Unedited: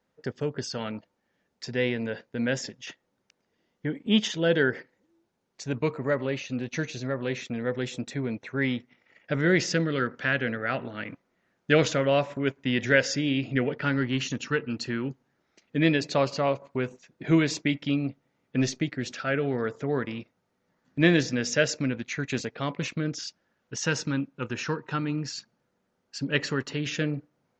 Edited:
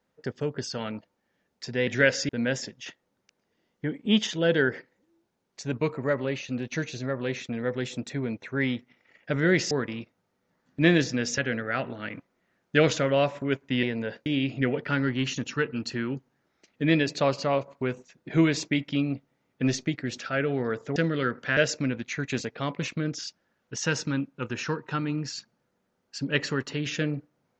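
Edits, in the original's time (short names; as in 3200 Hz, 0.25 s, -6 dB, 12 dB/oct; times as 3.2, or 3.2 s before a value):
1.87–2.3 swap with 12.78–13.2
9.72–10.33 swap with 19.9–21.57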